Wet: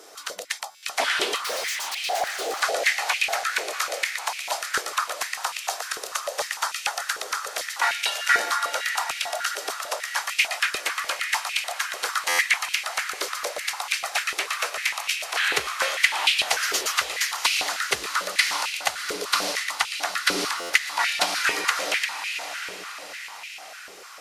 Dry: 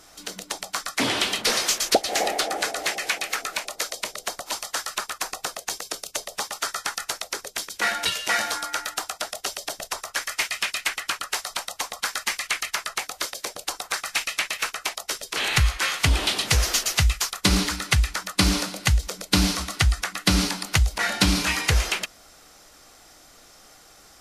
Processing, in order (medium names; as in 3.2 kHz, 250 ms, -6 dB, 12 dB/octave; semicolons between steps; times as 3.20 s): in parallel at +0.5 dB: compression, threshold -35 dBFS, peak gain reduction 19.5 dB; on the sum: echo that smears into a reverb 703 ms, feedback 50%, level -8.5 dB; 1.36–2.62 s: hard clipper -24.5 dBFS, distortion -15 dB; buffer glitch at 0.70/12.28/20.57 s, samples 512, times 10; step-sequenced high-pass 6.7 Hz 420–2500 Hz; trim -4.5 dB